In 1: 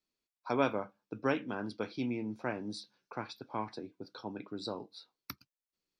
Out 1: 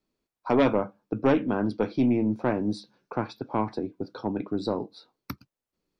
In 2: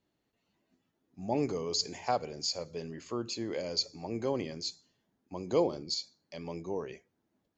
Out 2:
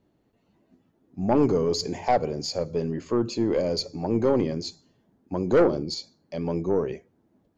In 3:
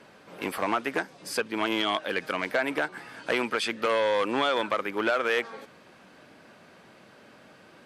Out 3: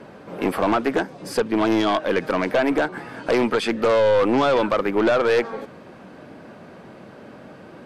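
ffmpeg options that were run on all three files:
-af "tiltshelf=frequency=1300:gain=7,aeval=exprs='0.335*(cos(1*acos(clip(val(0)/0.335,-1,1)))-cos(1*PI/2))+0.0841*(cos(5*acos(clip(val(0)/0.335,-1,1)))-cos(5*PI/2))+0.0168*(cos(8*acos(clip(val(0)/0.335,-1,1)))-cos(8*PI/2))':channel_layout=same"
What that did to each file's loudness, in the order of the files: +10.5, +8.5, +7.0 LU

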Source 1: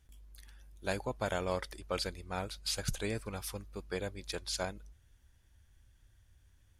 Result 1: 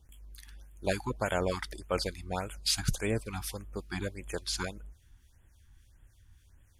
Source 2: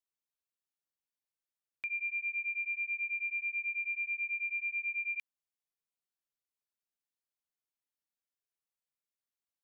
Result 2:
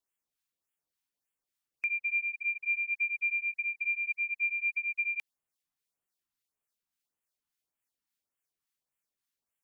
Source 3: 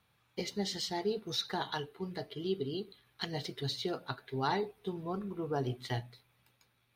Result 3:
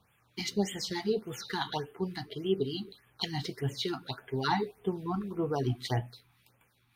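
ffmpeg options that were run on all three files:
-filter_complex "[0:a]acrossover=split=1400[link_01][link_02];[link_01]aeval=exprs='val(0)*(1-0.5/2+0.5/2*cos(2*PI*3.5*n/s))':channel_layout=same[link_03];[link_02]aeval=exprs='val(0)*(1-0.5/2-0.5/2*cos(2*PI*3.5*n/s))':channel_layout=same[link_04];[link_03][link_04]amix=inputs=2:normalize=0,afftfilt=real='re*(1-between(b*sr/1024,470*pow(5000/470,0.5+0.5*sin(2*PI*1.7*pts/sr))/1.41,470*pow(5000/470,0.5+0.5*sin(2*PI*1.7*pts/sr))*1.41))':imag='im*(1-between(b*sr/1024,470*pow(5000/470,0.5+0.5*sin(2*PI*1.7*pts/sr))/1.41,470*pow(5000/470,0.5+0.5*sin(2*PI*1.7*pts/sr))*1.41))':win_size=1024:overlap=0.75,volume=7dB"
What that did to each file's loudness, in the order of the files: +4.0, +3.5, +3.0 LU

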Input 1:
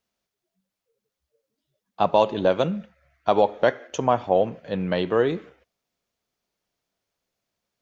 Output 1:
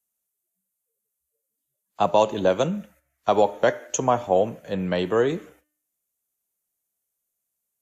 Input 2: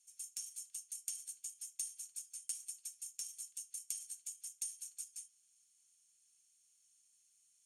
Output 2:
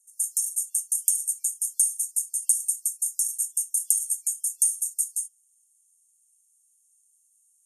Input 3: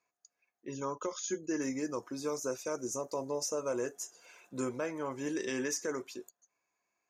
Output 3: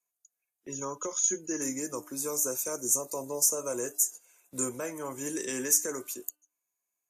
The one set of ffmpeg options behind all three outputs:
-filter_complex "[0:a]agate=range=-12dB:threshold=-53dB:ratio=16:detection=peak,bandreject=frequency=300.8:width_type=h:width=4,bandreject=frequency=601.6:width_type=h:width=4,bandreject=frequency=902.4:width_type=h:width=4,bandreject=frequency=1203.2:width_type=h:width=4,bandreject=frequency=1504:width_type=h:width=4,bandreject=frequency=1804.8:width_type=h:width=4,bandreject=frequency=2105.6:width_type=h:width=4,bandreject=frequency=2406.4:width_type=h:width=4,bandreject=frequency=2707.2:width_type=h:width=4,bandreject=frequency=3008:width_type=h:width=4,acrossover=split=250|530|4200[link_01][link_02][link_03][link_04];[link_04]aexciter=amount=13.3:drive=4.9:freq=6800[link_05];[link_01][link_02][link_03][link_05]amix=inputs=4:normalize=0" -ar 32000 -c:a wmav2 -b:a 128k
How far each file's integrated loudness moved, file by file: 0.0, +20.0, +7.0 LU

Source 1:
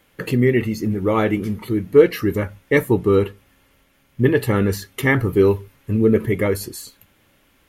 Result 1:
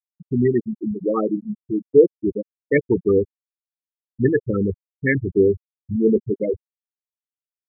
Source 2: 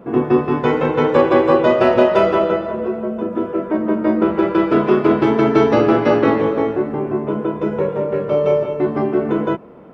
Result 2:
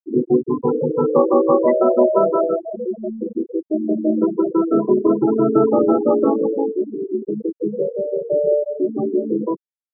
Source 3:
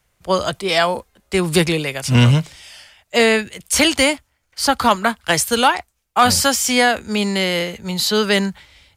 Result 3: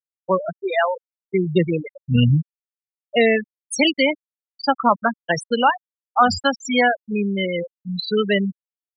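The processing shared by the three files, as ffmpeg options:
-af "equalizer=frequency=110:width=6:gain=-8,afftfilt=real='re*gte(hypot(re,im),0.447)':imag='im*gte(hypot(re,im),0.447)':win_size=1024:overlap=0.75,volume=-1dB"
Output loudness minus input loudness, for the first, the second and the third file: −2.0, −2.0, −3.5 LU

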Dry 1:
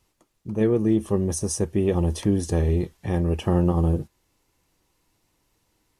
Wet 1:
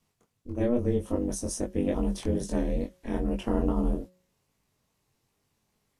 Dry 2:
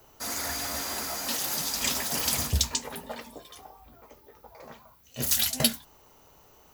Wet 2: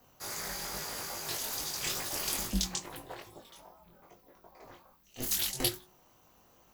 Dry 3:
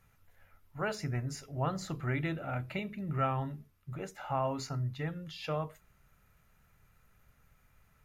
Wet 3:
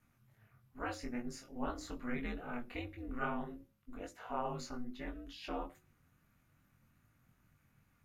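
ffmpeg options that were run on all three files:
-af "aeval=exprs='val(0)*sin(2*PI*120*n/s)':channel_layout=same,flanger=delay=19.5:depth=3.7:speed=2.4,bandreject=frequency=182.8:width_type=h:width=4,bandreject=frequency=365.6:width_type=h:width=4,bandreject=frequency=548.4:width_type=h:width=4"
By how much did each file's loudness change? −6.0, −6.5, −6.5 LU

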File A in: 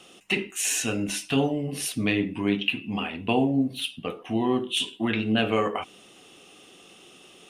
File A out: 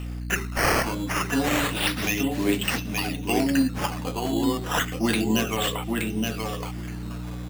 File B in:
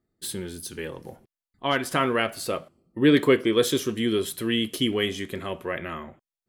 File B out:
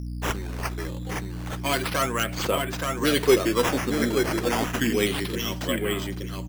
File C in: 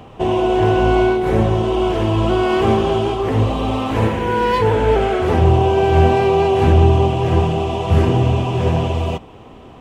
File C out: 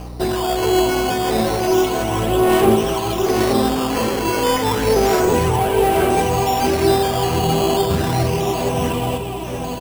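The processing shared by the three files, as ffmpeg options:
-filter_complex "[0:a]aphaser=in_gain=1:out_gain=1:delay=4.1:decay=0.52:speed=0.39:type=sinusoidal,equalizer=frequency=75:width_type=o:width=1.1:gain=-14,acrossover=split=470[link_01][link_02];[link_02]volume=14.5dB,asoftclip=hard,volume=-14.5dB[link_03];[link_01][link_03]amix=inputs=2:normalize=0,bandreject=frequency=50:width_type=h:width=6,bandreject=frequency=100:width_type=h:width=6,bandreject=frequency=150:width_type=h:width=6,bandreject=frequency=200:width_type=h:width=6,aeval=exprs='val(0)+0.0398*(sin(2*PI*60*n/s)+sin(2*PI*2*60*n/s)/2+sin(2*PI*3*60*n/s)/3+sin(2*PI*4*60*n/s)/4+sin(2*PI*5*60*n/s)/5)':channel_layout=same,aemphasis=mode=production:type=cd,aecho=1:1:873|1746|2619:0.631|0.101|0.0162,acrusher=samples=8:mix=1:aa=0.000001:lfo=1:lforange=8:lforate=0.3,volume=-2.5dB"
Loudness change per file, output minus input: +1.0, 0.0, −1.5 LU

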